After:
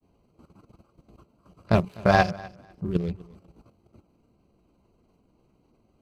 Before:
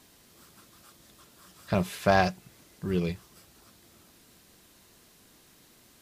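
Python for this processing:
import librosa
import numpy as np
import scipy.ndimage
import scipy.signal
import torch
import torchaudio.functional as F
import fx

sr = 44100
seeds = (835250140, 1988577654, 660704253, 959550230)

y = fx.wiener(x, sr, points=25)
y = fx.low_shelf(y, sr, hz=100.0, db=4.5)
y = fx.level_steps(y, sr, step_db=12)
y = fx.granulator(y, sr, seeds[0], grain_ms=100.0, per_s=20.0, spray_ms=16.0, spread_st=0)
y = fx.echo_feedback(y, sr, ms=250, feedback_pct=19, wet_db=-21.5)
y = F.gain(torch.from_numpy(y), 8.5).numpy()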